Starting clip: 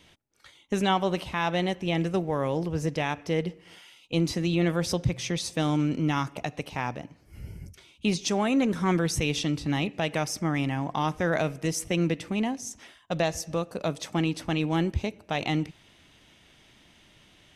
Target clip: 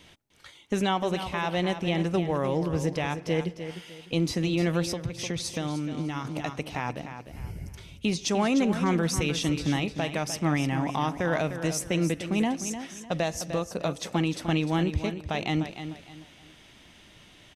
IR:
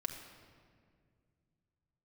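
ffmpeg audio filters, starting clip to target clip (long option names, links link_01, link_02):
-filter_complex "[0:a]alimiter=limit=-20dB:level=0:latency=1:release=447,asplit=2[link_01][link_02];[link_02]aecho=0:1:302|604|906:0.316|0.098|0.0304[link_03];[link_01][link_03]amix=inputs=2:normalize=0,asettb=1/sr,asplit=3[link_04][link_05][link_06];[link_04]atrim=end=4.834[link_07];[link_05]atrim=start=4.83:end=6.25,asetpts=PTS-STARTPTS,afade=type=in:duration=0.004:curve=qsin,afade=type=out:start_time=1.416:duration=0.004:curve=qsin,acompressor=threshold=-31dB:ratio=6[link_08];[link_06]atrim=start=6.246[link_09];[link_07][link_08]acrossfade=duration=0.004:curve1=hsin:curve2=qsin[link_10];[link_10][link_09]acrossfade=duration=0.004:curve1=qsin:curve2=hsin,volume=3.5dB"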